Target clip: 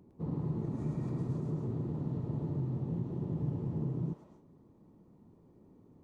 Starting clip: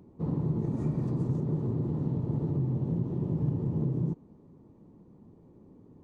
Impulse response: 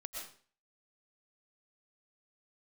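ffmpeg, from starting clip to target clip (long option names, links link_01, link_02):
-filter_complex "[0:a]asplit=2[link_01][link_02];[link_02]highpass=840[link_03];[1:a]atrim=start_sample=2205,afade=type=out:start_time=0.24:duration=0.01,atrim=end_sample=11025,adelay=108[link_04];[link_03][link_04]afir=irnorm=-1:irlink=0,volume=3.5dB[link_05];[link_01][link_05]amix=inputs=2:normalize=0,volume=-5.5dB"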